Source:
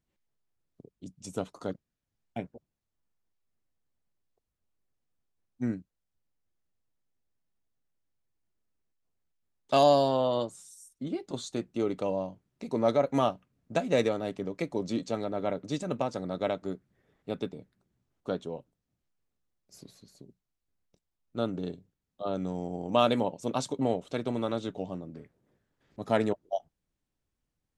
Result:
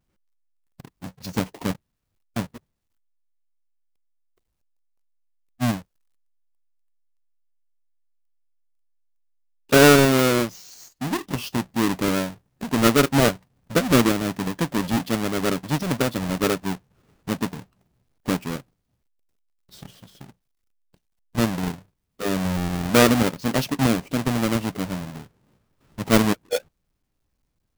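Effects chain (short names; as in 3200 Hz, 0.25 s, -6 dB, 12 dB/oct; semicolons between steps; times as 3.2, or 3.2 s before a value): half-waves squared off; formant shift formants -5 st; gain +4.5 dB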